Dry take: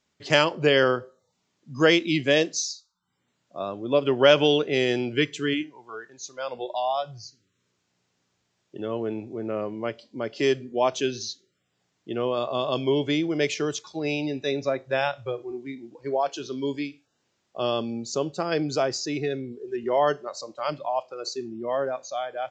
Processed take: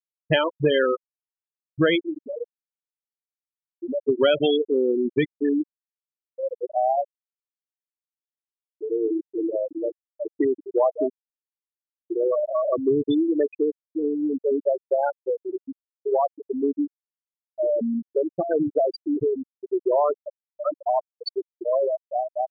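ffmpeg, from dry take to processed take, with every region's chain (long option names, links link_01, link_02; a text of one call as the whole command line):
ffmpeg -i in.wav -filter_complex "[0:a]asettb=1/sr,asplit=3[link_01][link_02][link_03];[link_01]atrim=end=2.094[link_04];[link_02]atrim=start=2.09:end=4.09,asetpts=PTS-STARTPTS,afade=type=in:duration=0.004:curve=qsin,afade=type=out:start_time=1.996:duration=0.004:curve=qsin,acompressor=threshold=-28dB:ratio=6:attack=3.2:release=140:knee=1:detection=peak,aeval=exprs='val(0)+0.0126*sin(2*PI*490*n/s)':channel_layout=same,asplit=2[link_05][link_06];[link_06]adelay=40,volume=-14dB[link_07];[link_05][link_07]amix=inputs=2:normalize=0,atrim=end_sample=88200[link_08];[link_03]atrim=start=4.086[link_09];[link_04][link_08]acrossfade=duration=0.004:curve1=hsin:curve2=qsin[link_10];[link_10][link_09]acrossfade=duration=0.004:curve1=qsin:curve2=hsin,asettb=1/sr,asplit=3[link_11][link_12][link_13];[link_11]atrim=end=8.844[link_14];[link_12]atrim=start=8.84:end=12.1,asetpts=PTS-STARTPTS,afade=type=in:duration=0.004:curve=qsin,afade=type=out:start_time=3.256:duration=0.004:curve=qsin,aecho=1:1:6.2:0.43,atrim=end_sample=143766,aecho=1:1:183|366|549|732:0.316|0.101|0.0324|0.0104,atrim=end_sample=143766[link_15];[link_13]atrim=start=12.096[link_16];[link_14][link_15]acrossfade=duration=0.004:curve1=hsin:curve2=qsin[link_17];[link_17][link_16]acrossfade=duration=0.004:curve1=qsin:curve2=hsin,afftfilt=real='re*gte(hypot(re,im),0.251)':imag='im*gte(hypot(re,im),0.251)':win_size=1024:overlap=0.75,acompressor=threshold=-26dB:ratio=3,volume=7.5dB" out.wav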